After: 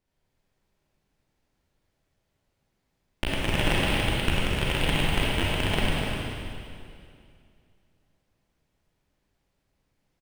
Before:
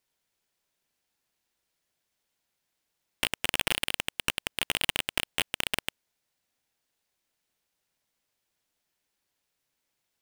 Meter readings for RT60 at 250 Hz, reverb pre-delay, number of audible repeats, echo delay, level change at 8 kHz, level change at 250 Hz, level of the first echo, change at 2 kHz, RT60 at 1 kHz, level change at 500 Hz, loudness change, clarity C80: 2.5 s, 33 ms, 1, 250 ms, −4.0 dB, +14.5 dB, −6.5 dB, +3.0 dB, 2.3 s, +11.0 dB, +3.0 dB, −3.0 dB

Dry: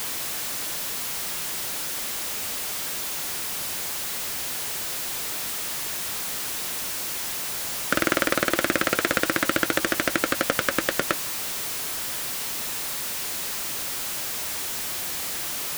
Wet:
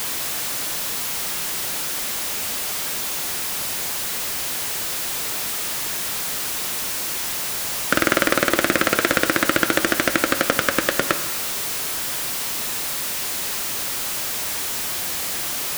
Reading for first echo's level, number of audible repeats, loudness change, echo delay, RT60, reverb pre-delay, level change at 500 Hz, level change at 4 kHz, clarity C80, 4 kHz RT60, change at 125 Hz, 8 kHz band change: no echo audible, no echo audible, +4.0 dB, no echo audible, 1.7 s, 22 ms, +4.5 dB, +4.0 dB, 13.0 dB, 1.1 s, +4.5 dB, +4.0 dB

